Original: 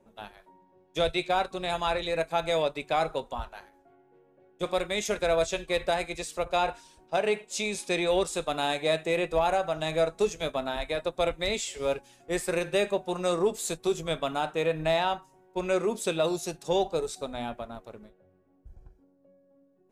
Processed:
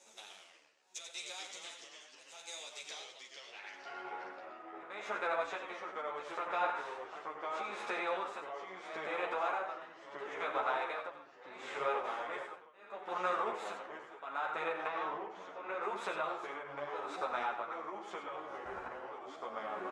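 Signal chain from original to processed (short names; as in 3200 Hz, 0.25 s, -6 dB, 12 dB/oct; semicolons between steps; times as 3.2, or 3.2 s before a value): per-bin compression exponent 0.6; recorder AGC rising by 11 dB/s; high shelf 5800 Hz -7 dB; compressor, threshold -27 dBFS, peak gain reduction 8.5 dB; band-pass sweep 6600 Hz -> 1300 Hz, 2.74–4.06; tremolo 0.75 Hz, depth 100%; echo 89 ms -8.5 dB; echoes that change speed 99 ms, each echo -2 st, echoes 3, each echo -6 dB; 14.86–15.82 air absorption 99 m; ensemble effect; gain +8 dB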